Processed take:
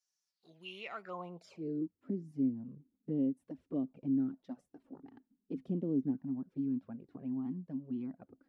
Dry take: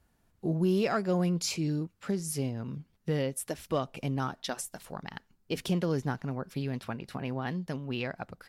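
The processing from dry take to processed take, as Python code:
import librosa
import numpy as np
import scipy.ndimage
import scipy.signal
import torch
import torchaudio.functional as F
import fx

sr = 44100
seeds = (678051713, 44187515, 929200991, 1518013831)

y = fx.env_flanger(x, sr, rest_ms=5.4, full_db=-25.0)
y = fx.filter_sweep_bandpass(y, sr, from_hz=5800.0, to_hz=270.0, start_s=0.24, end_s=1.95, q=5.8)
y = F.gain(torch.from_numpy(y), 7.0).numpy()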